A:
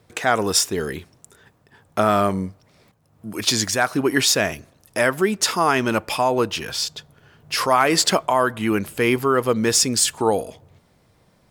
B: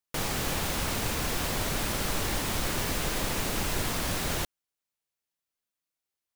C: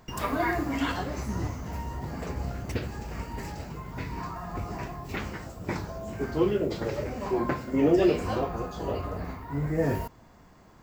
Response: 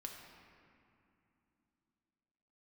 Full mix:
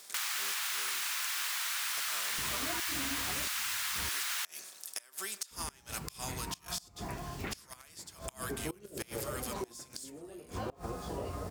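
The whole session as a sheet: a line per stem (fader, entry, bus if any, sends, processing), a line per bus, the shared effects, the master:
−1.5 dB, 0.00 s, bus A, no send, compressor on every frequency bin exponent 0.6; first difference; flanger 0.18 Hz, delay 5 ms, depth 1.2 ms, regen +62%
+3.0 dB, 0.00 s, no bus, no send, high-pass filter 1,200 Hz 24 dB per octave
−2.5 dB, 2.30 s, muted 0:04.09–0:05.51, bus A, no send, no processing
bus A: 0.0 dB, gate with flip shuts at −18 dBFS, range −25 dB; downward compressor 2 to 1, threshold −37 dBFS, peak gain reduction 7.5 dB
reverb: not used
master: downward compressor 3 to 1, threshold −33 dBFS, peak gain reduction 6 dB

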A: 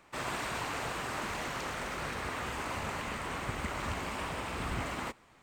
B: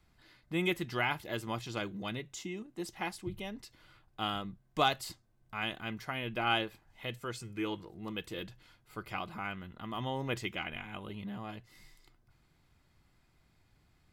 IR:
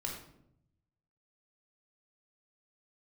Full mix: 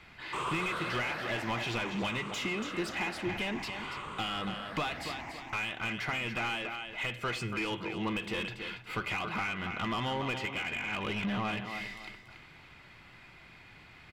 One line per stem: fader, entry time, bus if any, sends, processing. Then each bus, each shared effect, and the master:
−7.5 dB, 0.20 s, no send, echo send −17.5 dB, rippled gain that drifts along the octave scale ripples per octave 0.69, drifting +0.57 Hz, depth 15 dB; automatic ducking −16 dB, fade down 2.00 s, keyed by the second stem
+1.0 dB, 0.00 s, send −17 dB, echo send −10.5 dB, parametric band 2,500 Hz +10.5 dB 1.1 octaves; downward compressor 20 to 1, threshold −38 dBFS, peak gain reduction 20.5 dB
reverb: on, RT60 0.75 s, pre-delay 17 ms
echo: repeating echo 283 ms, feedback 28%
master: bass and treble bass +6 dB, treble 0 dB; mid-hump overdrive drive 23 dB, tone 1,700 Hz, clips at −22 dBFS

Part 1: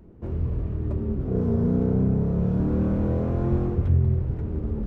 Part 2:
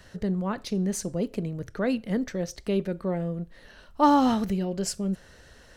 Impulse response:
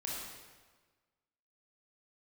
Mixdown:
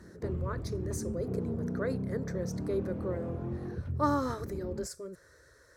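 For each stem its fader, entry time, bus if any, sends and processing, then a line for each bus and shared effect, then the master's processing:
−1.0 dB, 0.00 s, no send, reverb reduction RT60 0.6 s; downward compressor 2 to 1, threshold −27 dBFS, peak gain reduction 6.5 dB; automatic ducking −6 dB, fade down 1.85 s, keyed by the second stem
−4.0 dB, 0.00 s, no send, de-essing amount 60%; phaser with its sweep stopped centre 780 Hz, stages 6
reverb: not used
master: high-pass filter 78 Hz

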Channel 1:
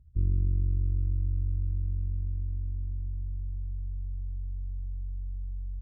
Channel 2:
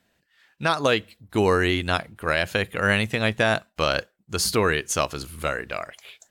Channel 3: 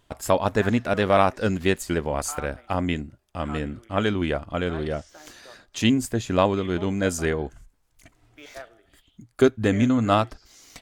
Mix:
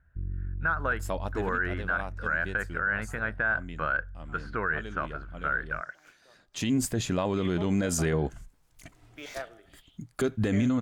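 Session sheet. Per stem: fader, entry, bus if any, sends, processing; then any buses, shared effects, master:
−8.5 dB, 0.00 s, no send, no processing
−13.0 dB, 0.00 s, no send, low-pass with resonance 1,500 Hz, resonance Q 9.8
+2.5 dB, 0.80 s, no send, automatic ducking −21 dB, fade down 1.70 s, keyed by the second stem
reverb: not used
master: parametric band 160 Hz +7 dB 0.33 octaves; brickwall limiter −18 dBFS, peak gain reduction 14.5 dB

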